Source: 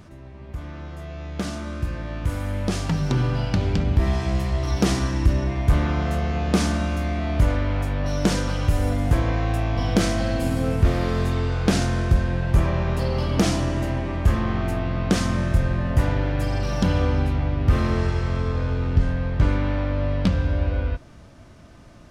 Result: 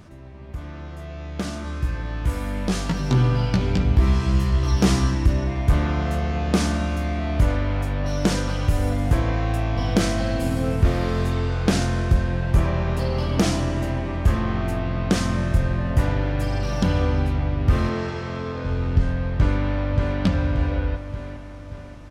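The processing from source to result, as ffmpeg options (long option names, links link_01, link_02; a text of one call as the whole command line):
ffmpeg -i in.wav -filter_complex "[0:a]asettb=1/sr,asplit=3[link_01][link_02][link_03];[link_01]atrim=end=1.634[link_04];[link_02]atrim=start=1.63:end=5.15,asetpts=PTS-STARTPTS,afade=type=in:duration=0.004:curve=qsin,afade=type=out:start_time=3.516:duration=0.004:curve=qsin,asplit=2[link_05][link_06];[link_06]adelay=16,volume=-4dB[link_07];[link_05][link_07]amix=inputs=2:normalize=0,atrim=end_sample=155232[link_08];[link_03]atrim=start=5.146[link_09];[link_04][link_08]acrossfade=duration=0.004:curve1=hsin:curve2=qsin[link_10];[link_10][link_09]acrossfade=duration=0.004:curve1=qsin:curve2=hsin,asettb=1/sr,asplit=3[link_11][link_12][link_13];[link_11]atrim=end=17.894[link_14];[link_12]atrim=start=17.89:end=18.65,asetpts=PTS-STARTPTS,afade=type=in:duration=0.004:curve=qsin,afade=type=out:start_time=0.756:duration=0.004:curve=qsin,highpass=150,lowpass=6900[link_15];[link_13]atrim=start=18.646[link_16];[link_14][link_15]acrossfade=duration=0.004:curve1=hsin:curve2=qsin[link_17];[link_17][link_16]acrossfade=duration=0.004:curve1=qsin:curve2=hsin,asplit=2[link_18][link_19];[link_19]afade=type=in:start_time=19.35:duration=0.01,afade=type=out:start_time=20.2:duration=0.01,aecho=0:1:580|1160|1740|2320|2900|3480|4060:0.595662|0.327614|0.180188|0.0991033|0.0545068|0.0299787|0.0164883[link_20];[link_18][link_20]amix=inputs=2:normalize=0" out.wav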